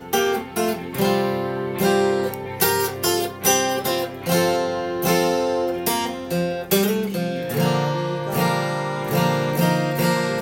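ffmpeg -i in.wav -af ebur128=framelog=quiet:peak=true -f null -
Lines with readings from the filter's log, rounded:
Integrated loudness:
  I:         -21.3 LUFS
  Threshold: -31.3 LUFS
Loudness range:
  LRA:         1.8 LU
  Threshold: -41.3 LUFS
  LRA low:   -22.2 LUFS
  LRA high:  -20.4 LUFS
True peak:
  Peak:       -4.2 dBFS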